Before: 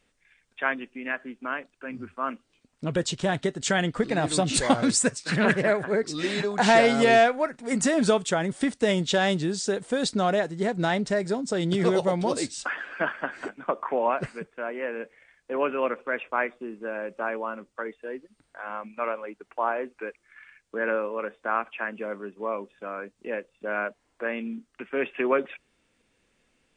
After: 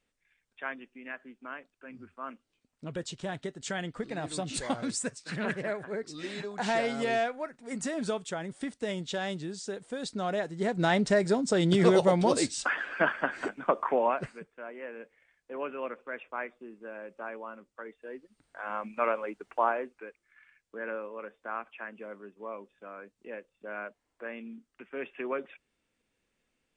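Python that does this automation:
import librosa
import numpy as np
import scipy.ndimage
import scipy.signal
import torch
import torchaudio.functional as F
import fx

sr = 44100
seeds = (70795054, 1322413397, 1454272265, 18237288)

y = fx.gain(x, sr, db=fx.line((10.06, -10.5), (11.03, 1.0), (13.88, 1.0), (14.48, -10.0), (17.83, -10.0), (18.87, 1.0), (19.6, 1.0), (20.06, -10.0)))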